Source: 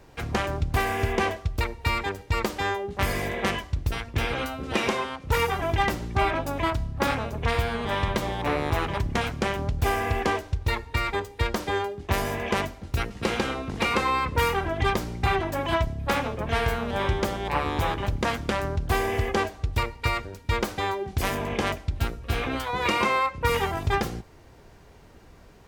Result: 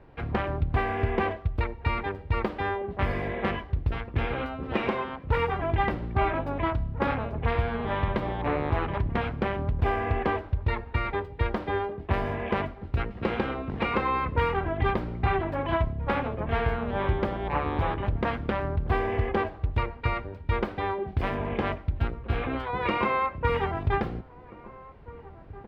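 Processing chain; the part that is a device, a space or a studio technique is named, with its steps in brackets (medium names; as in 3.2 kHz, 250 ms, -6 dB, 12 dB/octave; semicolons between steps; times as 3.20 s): shout across a valley (distance through air 450 m; echo from a far wall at 280 m, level -18 dB)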